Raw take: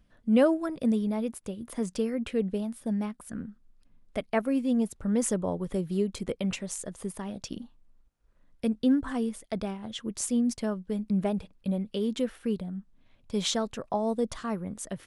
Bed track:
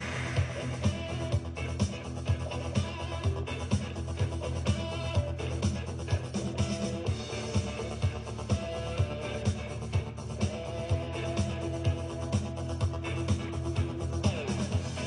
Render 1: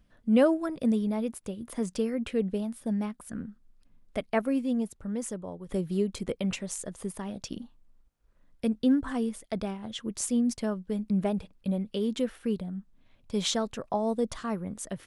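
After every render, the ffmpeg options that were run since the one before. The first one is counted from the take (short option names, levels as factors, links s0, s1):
-filter_complex "[0:a]asplit=2[s0][s1];[s0]atrim=end=5.69,asetpts=PTS-STARTPTS,afade=t=out:st=4.48:d=1.21:c=qua:silence=0.334965[s2];[s1]atrim=start=5.69,asetpts=PTS-STARTPTS,afade=t=in:d=0.004:c=hsin:silence=0.334965[s3];[s2][s3]concat=n=2:v=0:a=1"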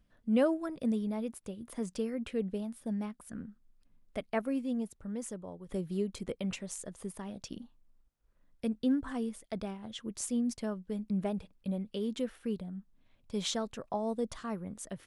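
-af "volume=0.531"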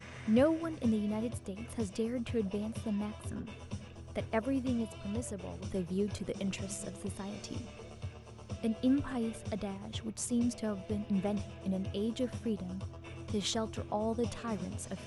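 -filter_complex "[1:a]volume=0.224[s0];[0:a][s0]amix=inputs=2:normalize=0"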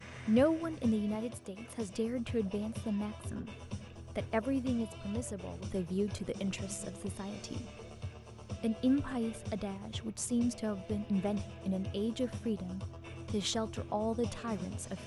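-filter_complex "[0:a]asettb=1/sr,asplit=3[s0][s1][s2];[s0]atrim=end=1.154[s3];[s1]atrim=start=1.15:end=1.89,asetpts=PTS-STARTPTS,afade=t=in:d=0.004:c=qsin,afade=t=out:st=0.736:d=0.004:c=qsin,highpass=f=220:p=1[s4];[s2]atrim=start=1.886[s5];[s3][s4]acrossfade=d=0.004:c1=hsin:c2=qsin[s6];[s6][s5]acrossfade=d=0.004:c1=qsin:c2=hsin"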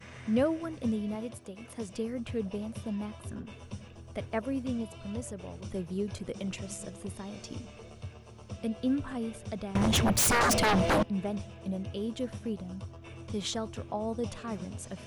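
-filter_complex "[0:a]asettb=1/sr,asplit=3[s0][s1][s2];[s0]atrim=end=9.754[s3];[s1]atrim=start=9.75:end=11.03,asetpts=PTS-STARTPTS,afade=t=in:d=0.004:c=qsin,afade=t=out:st=1.276:d=0.004:c=qsin,aeval=exprs='0.0891*sin(PI/2*7.94*val(0)/0.0891)':c=same[s4];[s2]atrim=start=11.026[s5];[s3][s4]acrossfade=d=0.004:c1=hsin:c2=qsin[s6];[s6][s5]acrossfade=d=0.004:c1=qsin:c2=hsin"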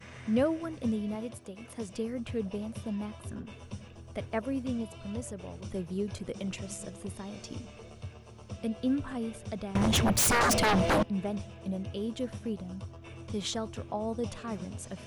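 -af anull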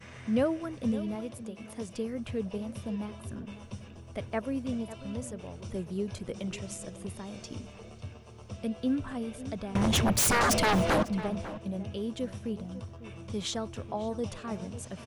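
-filter_complex "[0:a]asplit=2[s0][s1];[s1]adelay=548.1,volume=0.2,highshelf=f=4000:g=-12.3[s2];[s0][s2]amix=inputs=2:normalize=0"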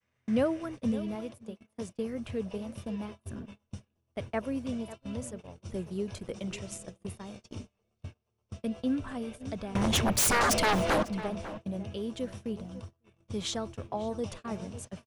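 -af "agate=range=0.0282:threshold=0.01:ratio=16:detection=peak,adynamicequalizer=threshold=0.00794:dfrequency=130:dqfactor=0.76:tfrequency=130:tqfactor=0.76:attack=5:release=100:ratio=0.375:range=2.5:mode=cutabove:tftype=bell"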